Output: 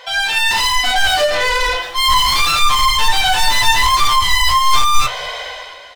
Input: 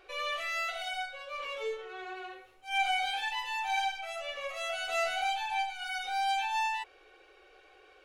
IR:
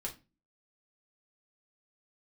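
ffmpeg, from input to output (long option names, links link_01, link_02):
-filter_complex "[0:a]dynaudnorm=framelen=130:gausssize=11:maxgain=16dB,asetrate=59535,aresample=44100,asplit=2[link_01][link_02];[link_02]highpass=frequency=720:poles=1,volume=32dB,asoftclip=type=tanh:threshold=-4dB[link_03];[link_01][link_03]amix=inputs=2:normalize=0,lowpass=frequency=6100:poles=1,volume=-6dB,flanger=delay=7.9:depth=8.7:regen=57:speed=0.3:shape=sinusoidal,asplit=2[link_04][link_05];[link_05]asplit=2[link_06][link_07];[link_06]adelay=222,afreqshift=-150,volume=-23dB[link_08];[link_07]adelay=444,afreqshift=-300,volume=-32.6dB[link_09];[link_08][link_09]amix=inputs=2:normalize=0[link_10];[link_04][link_10]amix=inputs=2:normalize=0,asubboost=boost=10.5:cutoff=64"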